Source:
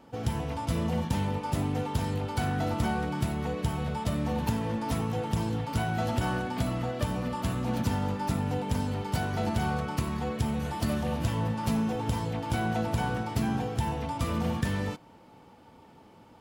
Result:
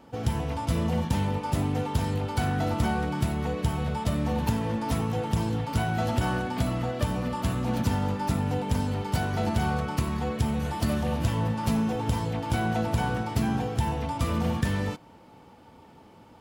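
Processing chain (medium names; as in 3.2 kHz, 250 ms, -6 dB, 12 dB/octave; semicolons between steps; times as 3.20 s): peaking EQ 71 Hz +2.5 dB; trim +2 dB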